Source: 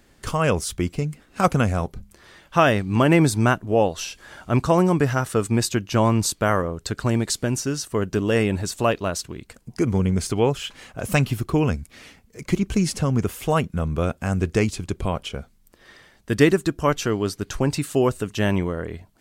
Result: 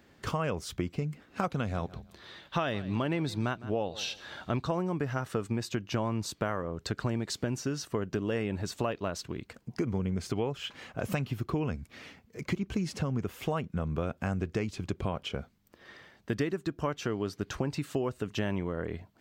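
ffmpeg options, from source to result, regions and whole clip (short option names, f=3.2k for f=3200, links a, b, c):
-filter_complex "[0:a]asettb=1/sr,asplit=3[a][b][c];[a]atrim=end=1.504[d];[b]atrim=start=1.5:end=4.68,asetpts=PTS-STARTPTS,afade=t=in:d=0.004:c=qsin,afade=t=out:st=3.176:d=0.004:c=qsin,equalizer=f=3.8k:t=o:w=0.45:g=11,aecho=1:1:158|316:0.075|0.0135,atrim=end_sample=140238[e];[c]atrim=start=4.676[f];[d][e]acrossfade=d=0.004:c1=hsin:c2=qsin[g];[g][f]acrossfade=d=0.004:c1=qsin:c2=hsin,highpass=78,equalizer=f=10k:t=o:w=1.2:g=-13,acompressor=threshold=-26dB:ratio=6,volume=-2dB"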